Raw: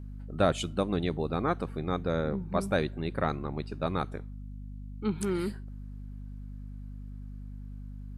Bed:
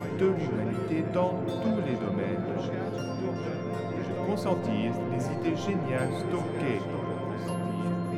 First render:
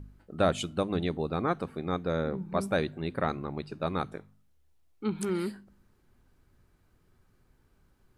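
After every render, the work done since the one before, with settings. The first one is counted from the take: de-hum 50 Hz, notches 5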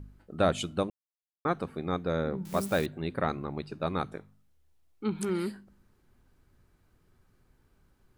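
0.9–1.45 mute; 2.45–2.86 switching spikes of -30.5 dBFS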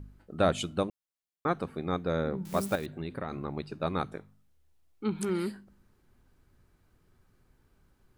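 2.75–3.32 compressor 10:1, threshold -30 dBFS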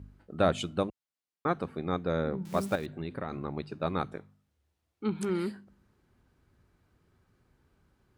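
HPF 46 Hz; high shelf 8200 Hz -9 dB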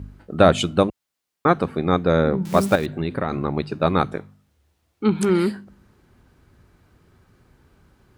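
gain +12 dB; limiter -2 dBFS, peak gain reduction 1.5 dB

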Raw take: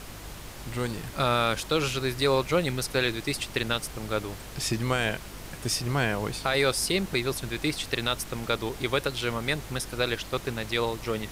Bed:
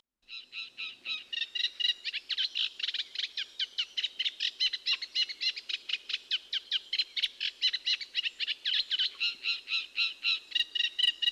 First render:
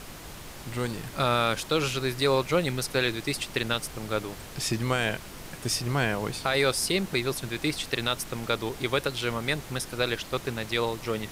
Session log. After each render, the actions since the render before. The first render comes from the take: de-hum 50 Hz, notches 2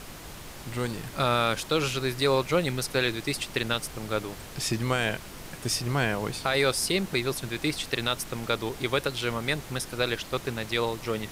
nothing audible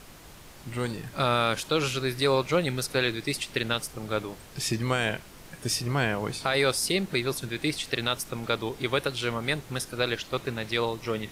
noise print and reduce 6 dB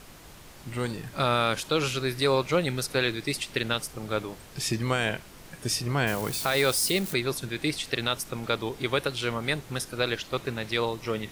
6.07–7.14 switching spikes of -27.5 dBFS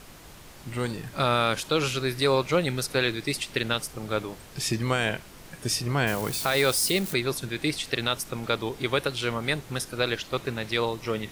gain +1 dB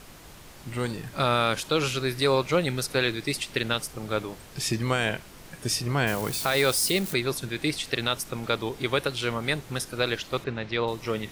10.44–10.88 air absorption 160 m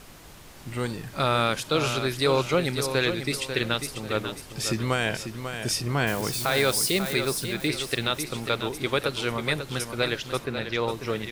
feedback echo 0.543 s, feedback 30%, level -8.5 dB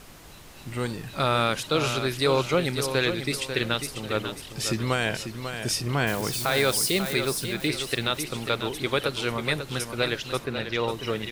add bed -14.5 dB

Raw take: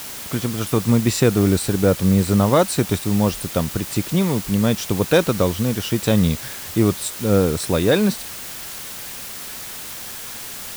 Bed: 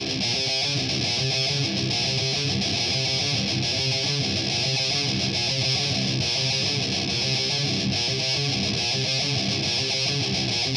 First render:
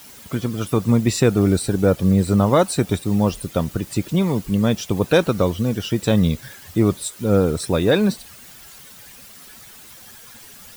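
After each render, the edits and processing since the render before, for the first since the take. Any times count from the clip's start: denoiser 12 dB, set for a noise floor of -33 dBFS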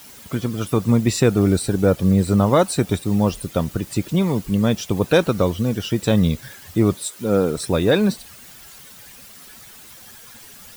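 6.95–7.58 Bessel high-pass 170 Hz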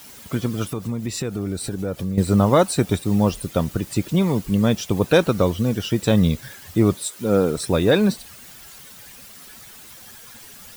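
0.66–2.18 compressor 3:1, threshold -25 dBFS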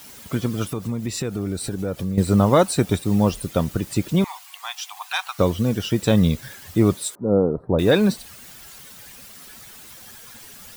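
4.24–5.39 rippled Chebyshev high-pass 730 Hz, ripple 3 dB; 7.15–7.79 inverse Chebyshev low-pass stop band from 2600 Hz, stop band 50 dB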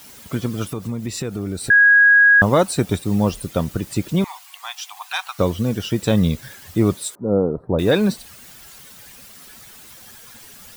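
1.7–2.42 bleep 1650 Hz -8 dBFS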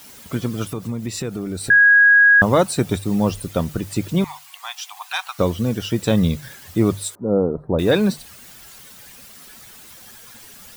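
notches 50/100/150 Hz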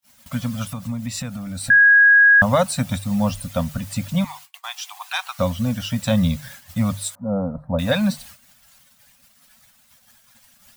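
gate -40 dBFS, range -41 dB; Chebyshev band-stop 260–540 Hz, order 3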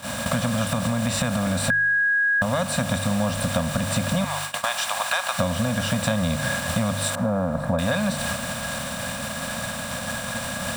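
per-bin compression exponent 0.4; compressor, threshold -20 dBFS, peak gain reduction 11 dB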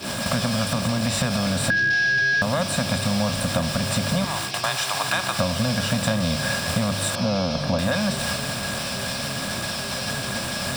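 add bed -8 dB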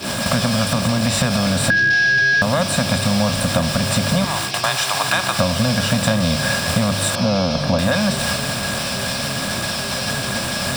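gain +5 dB

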